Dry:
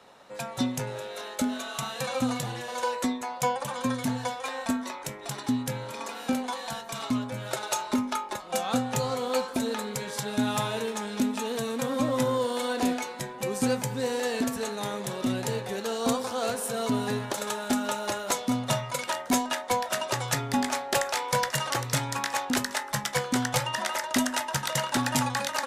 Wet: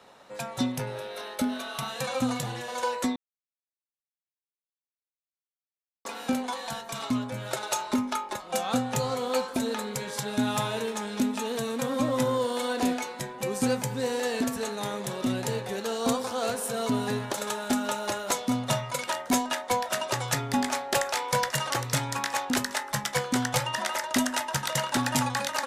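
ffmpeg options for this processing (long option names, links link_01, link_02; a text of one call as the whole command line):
ffmpeg -i in.wav -filter_complex "[0:a]asettb=1/sr,asplit=3[link_01][link_02][link_03];[link_01]atrim=end=0.724[link_04];[link_02]atrim=start=0.72:end=1.88,asetpts=PTS-STARTPTS,afade=type=in:duration=0.004:curve=qsin,afade=type=out:start_time=1.156:duration=0.004:curve=qsin,equalizer=frequency=7100:width_type=o:width=0.25:gain=-11.5[link_05];[link_03]atrim=start=1.876[link_06];[link_04][link_05]acrossfade=duration=0.004:curve1=hsin:curve2=qsin[link_07];[link_07][link_06]acrossfade=duration=0.004:curve1=qsin:curve2=hsin,asplit=3[link_08][link_09][link_10];[link_08]atrim=end=3.16,asetpts=PTS-STARTPTS,afade=type=out:start_time=3.156:duration=0.004:curve=hsin[link_11];[link_09]atrim=start=3.16:end=6.05,asetpts=PTS-STARTPTS,volume=0[link_12];[link_10]atrim=start=6.05,asetpts=PTS-STARTPTS,afade=type=in:duration=0.004:curve=hsin[link_13];[link_11][link_12][link_13]concat=n=3:v=0:a=1" out.wav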